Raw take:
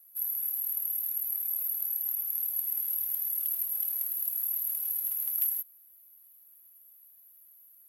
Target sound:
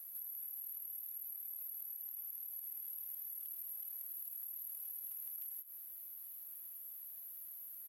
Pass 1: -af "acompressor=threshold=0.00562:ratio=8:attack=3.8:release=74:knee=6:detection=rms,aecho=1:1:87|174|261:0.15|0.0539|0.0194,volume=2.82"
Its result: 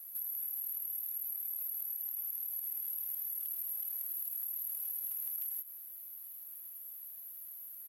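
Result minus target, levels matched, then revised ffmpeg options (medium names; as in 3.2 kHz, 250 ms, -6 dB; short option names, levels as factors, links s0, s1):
compression: peak gain reduction -7 dB
-af "acompressor=threshold=0.00224:ratio=8:attack=3.8:release=74:knee=6:detection=rms,aecho=1:1:87|174|261:0.15|0.0539|0.0194,volume=2.82"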